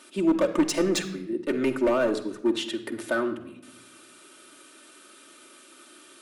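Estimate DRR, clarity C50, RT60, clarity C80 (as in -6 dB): 0.0 dB, 11.5 dB, 0.80 s, 14.0 dB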